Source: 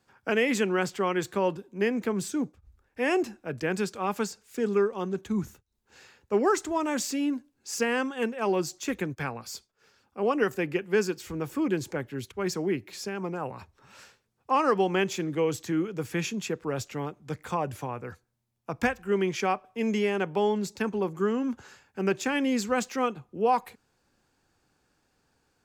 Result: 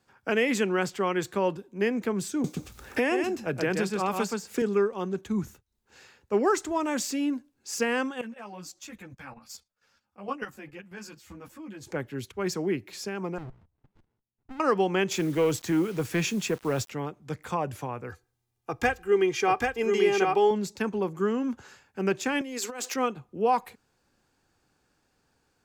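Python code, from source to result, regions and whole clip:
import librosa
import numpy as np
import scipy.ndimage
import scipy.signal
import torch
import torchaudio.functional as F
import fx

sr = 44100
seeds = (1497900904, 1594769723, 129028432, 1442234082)

y = fx.chain(x, sr, fx.highpass(hz=45.0, slope=12),
    fx.echo_single(ms=126, db=-4.5),
    fx.band_squash(depth_pct=100), at=(2.44, 4.62))
y = fx.chain(y, sr, fx.peak_eq(hz=400.0, db=-13.5, octaves=0.33),
    fx.level_steps(step_db=13),
    fx.ensemble(), at=(8.21, 11.87))
y = fx.chain(y, sr, fx.lowpass(hz=1200.0, slope=12),
    fx.level_steps(step_db=19),
    fx.running_max(window=65), at=(13.38, 14.6))
y = fx.chain(y, sr, fx.leveller(passes=1),
    fx.quant_dither(seeds[0], bits=8, dither='none'), at=(15.11, 16.9))
y = fx.chain(y, sr, fx.comb(ms=2.5, depth=0.65),
    fx.echo_single(ms=787, db=-3.0), at=(18.09, 20.51))
y = fx.chain(y, sr, fx.cheby1_highpass(hz=270.0, order=5),
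    fx.high_shelf(hz=5900.0, db=6.5),
    fx.over_compress(threshold_db=-35.0, ratio=-1.0), at=(22.41, 22.94))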